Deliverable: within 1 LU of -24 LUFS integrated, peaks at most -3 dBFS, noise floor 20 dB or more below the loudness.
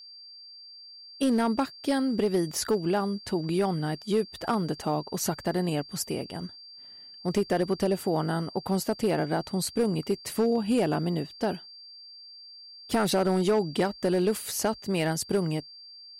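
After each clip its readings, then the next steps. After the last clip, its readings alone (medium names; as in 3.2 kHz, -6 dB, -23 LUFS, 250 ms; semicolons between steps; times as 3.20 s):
clipped samples 0.9%; clipping level -18.0 dBFS; steady tone 4.7 kHz; tone level -45 dBFS; loudness -28.0 LUFS; peak level -18.0 dBFS; loudness target -24.0 LUFS
-> clip repair -18 dBFS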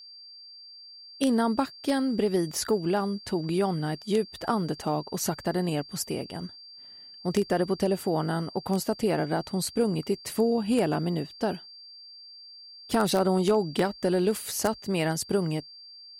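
clipped samples 0.0%; steady tone 4.7 kHz; tone level -45 dBFS
-> band-stop 4.7 kHz, Q 30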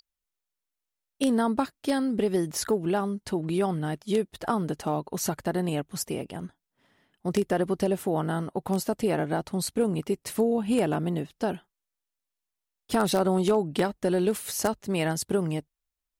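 steady tone not found; loudness -27.5 LUFS; peak level -9.0 dBFS; loudness target -24.0 LUFS
-> trim +3.5 dB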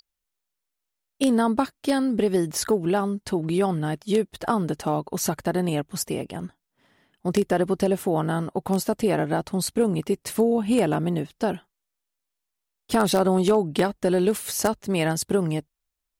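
loudness -24.0 LUFS; peak level -5.5 dBFS; noise floor -83 dBFS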